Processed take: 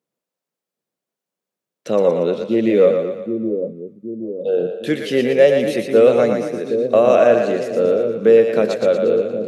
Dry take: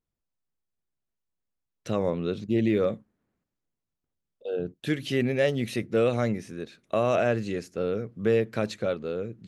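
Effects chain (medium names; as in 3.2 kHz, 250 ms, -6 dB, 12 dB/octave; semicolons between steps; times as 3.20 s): high-pass 160 Hz 24 dB/octave; peaking EQ 520 Hz +8.5 dB 0.84 oct; two-band feedback delay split 470 Hz, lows 770 ms, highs 117 ms, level -5 dB; trim +5 dB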